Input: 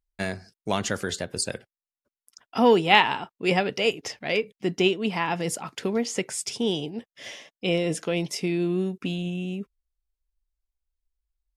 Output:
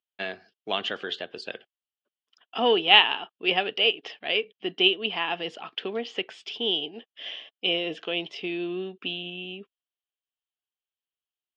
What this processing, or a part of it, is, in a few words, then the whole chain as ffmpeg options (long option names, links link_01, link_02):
phone earpiece: -af "highpass=480,equalizer=frequency=550:width_type=q:width=4:gain=-7,equalizer=frequency=940:width_type=q:width=4:gain=-8,equalizer=frequency=1400:width_type=q:width=4:gain=-5,equalizer=frequency=2100:width_type=q:width=4:gain=-8,equalizer=frequency=3100:width_type=q:width=4:gain=10,lowpass=frequency=3300:width=0.5412,lowpass=frequency=3300:width=1.3066,volume=2.5dB"